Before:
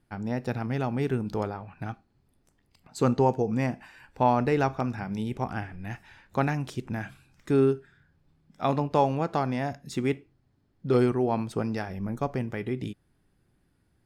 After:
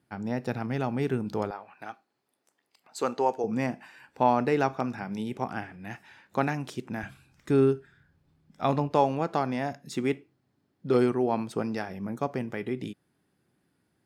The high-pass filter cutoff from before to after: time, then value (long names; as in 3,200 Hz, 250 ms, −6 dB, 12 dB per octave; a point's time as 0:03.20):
120 Hz
from 0:01.51 460 Hz
from 0:03.44 170 Hz
from 0:07.03 41 Hz
from 0:08.91 160 Hz